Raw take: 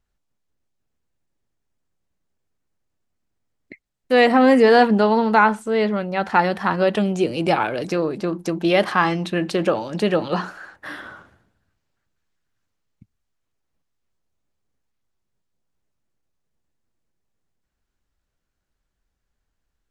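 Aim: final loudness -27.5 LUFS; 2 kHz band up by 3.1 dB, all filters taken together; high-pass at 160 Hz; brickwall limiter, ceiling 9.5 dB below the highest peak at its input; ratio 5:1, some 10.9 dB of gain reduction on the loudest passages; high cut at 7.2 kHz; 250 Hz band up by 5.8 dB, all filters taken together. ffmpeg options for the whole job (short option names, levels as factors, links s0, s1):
-af "highpass=160,lowpass=7200,equalizer=f=250:t=o:g=8,equalizer=f=2000:t=o:g=4,acompressor=threshold=0.126:ratio=5,volume=0.794,alimiter=limit=0.141:level=0:latency=1"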